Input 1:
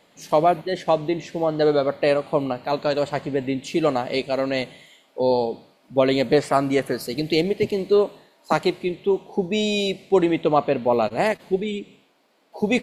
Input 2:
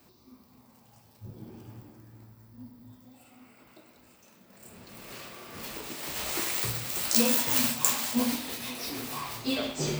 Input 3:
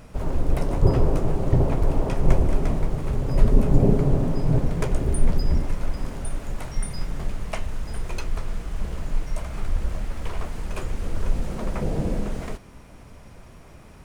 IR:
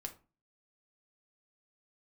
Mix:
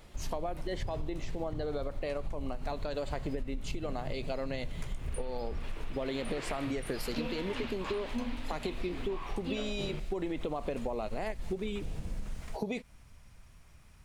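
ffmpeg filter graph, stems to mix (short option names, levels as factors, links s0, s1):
-filter_complex "[0:a]alimiter=limit=0.2:level=0:latency=1:release=83,volume=0.708[s0];[1:a]lowpass=f=3300:w=0.5412,lowpass=f=3300:w=1.3066,volume=0.708[s1];[2:a]equalizer=f=420:t=o:w=2.7:g=-14,volume=0.422[s2];[s0][s2]amix=inputs=2:normalize=0,acompressor=threshold=0.0562:ratio=6,volume=1[s3];[s1][s3]amix=inputs=2:normalize=0,acompressor=threshold=0.0282:ratio=6"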